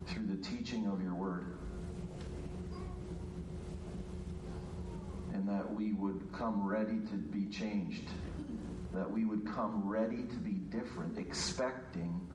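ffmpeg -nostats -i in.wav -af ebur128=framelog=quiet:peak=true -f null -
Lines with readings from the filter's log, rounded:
Integrated loudness:
  I:         -39.7 LUFS
  Threshold: -49.7 LUFS
Loudness range:
  LRA:         6.8 LU
  Threshold: -59.8 LUFS
  LRA low:   -45.0 LUFS
  LRA high:  -38.1 LUFS
True peak:
  Peak:      -22.6 dBFS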